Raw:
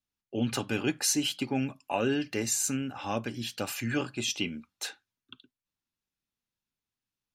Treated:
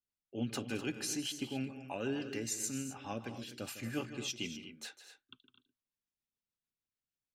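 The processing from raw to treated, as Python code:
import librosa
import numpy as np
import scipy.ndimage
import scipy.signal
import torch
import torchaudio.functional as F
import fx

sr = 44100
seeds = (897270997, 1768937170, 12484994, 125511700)

y = fx.rotary(x, sr, hz=6.7)
y = fx.echo_multitap(y, sr, ms=(156, 218, 250), db=(-12.5, -15.5, -12.5))
y = F.gain(torch.from_numpy(y), -7.0).numpy()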